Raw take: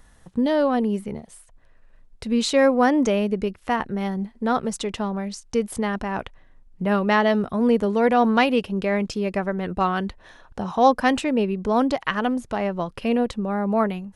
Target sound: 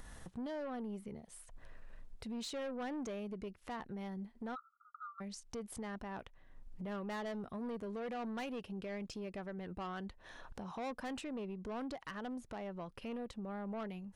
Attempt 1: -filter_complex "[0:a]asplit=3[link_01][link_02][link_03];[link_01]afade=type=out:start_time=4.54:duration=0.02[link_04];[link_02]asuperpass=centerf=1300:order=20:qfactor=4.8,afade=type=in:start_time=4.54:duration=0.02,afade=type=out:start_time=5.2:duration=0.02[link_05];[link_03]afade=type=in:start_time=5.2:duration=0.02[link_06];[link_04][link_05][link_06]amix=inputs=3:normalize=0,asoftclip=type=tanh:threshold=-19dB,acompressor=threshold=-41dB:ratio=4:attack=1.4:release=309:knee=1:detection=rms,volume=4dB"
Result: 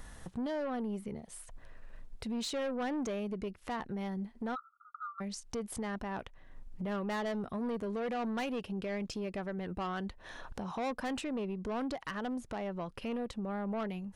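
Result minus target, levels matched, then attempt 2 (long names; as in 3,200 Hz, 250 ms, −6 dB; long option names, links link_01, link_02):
downward compressor: peak gain reduction −6 dB
-filter_complex "[0:a]asplit=3[link_01][link_02][link_03];[link_01]afade=type=out:start_time=4.54:duration=0.02[link_04];[link_02]asuperpass=centerf=1300:order=20:qfactor=4.8,afade=type=in:start_time=4.54:duration=0.02,afade=type=out:start_time=5.2:duration=0.02[link_05];[link_03]afade=type=in:start_time=5.2:duration=0.02[link_06];[link_04][link_05][link_06]amix=inputs=3:normalize=0,asoftclip=type=tanh:threshold=-19dB,acompressor=threshold=-49dB:ratio=4:attack=1.4:release=309:knee=1:detection=rms,volume=4dB"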